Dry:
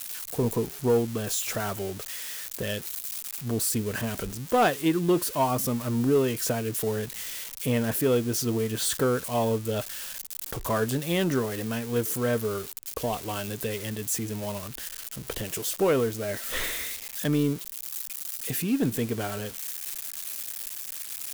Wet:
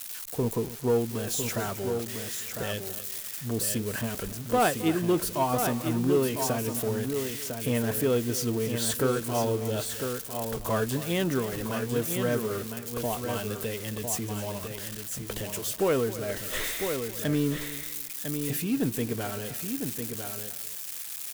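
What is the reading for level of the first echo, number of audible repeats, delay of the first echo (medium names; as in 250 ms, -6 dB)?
-15.5 dB, 5, 267 ms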